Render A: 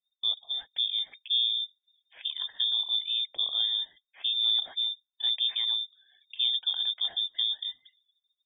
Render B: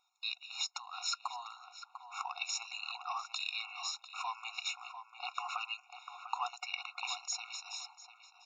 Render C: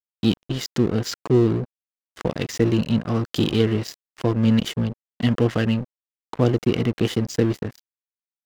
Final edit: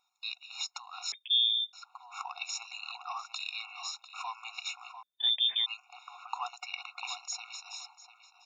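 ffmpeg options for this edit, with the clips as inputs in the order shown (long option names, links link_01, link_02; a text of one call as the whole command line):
ffmpeg -i take0.wav -i take1.wav -filter_complex "[0:a]asplit=2[link_01][link_02];[1:a]asplit=3[link_03][link_04][link_05];[link_03]atrim=end=1.122[link_06];[link_01]atrim=start=1.118:end=1.732[link_07];[link_04]atrim=start=1.728:end=5.032[link_08];[link_02]atrim=start=5.028:end=5.662[link_09];[link_05]atrim=start=5.658[link_10];[link_06][link_07]acrossfade=duration=0.004:curve1=hsin:curve2=hsin[link_11];[link_11][link_08]acrossfade=duration=0.004:curve1=hsin:curve2=hsin[link_12];[link_12][link_09]acrossfade=duration=0.004:curve1=hsin:curve2=hsin[link_13];[link_13][link_10]acrossfade=duration=0.004:curve1=hsin:curve2=hsin" out.wav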